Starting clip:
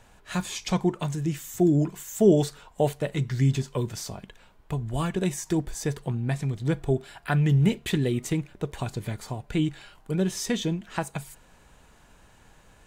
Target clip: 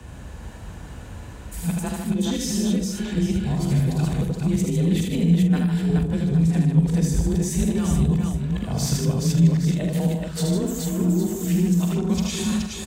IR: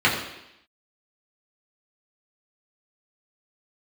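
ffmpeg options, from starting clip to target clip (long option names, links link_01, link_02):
-filter_complex "[0:a]areverse,lowshelf=frequency=410:gain=9.5,acontrast=78,alimiter=limit=-13dB:level=0:latency=1:release=466,acrossover=split=150|3000[link_01][link_02][link_03];[link_02]acompressor=threshold=-32dB:ratio=3[link_04];[link_01][link_04][link_03]amix=inputs=3:normalize=0,afreqshift=32,asplit=2[link_05][link_06];[link_06]adelay=43,volume=-10.5dB[link_07];[link_05][link_07]amix=inputs=2:normalize=0,asplit=2[link_08][link_09];[link_09]aecho=0:1:78|152|241|424|813:0.668|0.501|0.112|0.668|0.266[link_10];[link_08][link_10]amix=inputs=2:normalize=0"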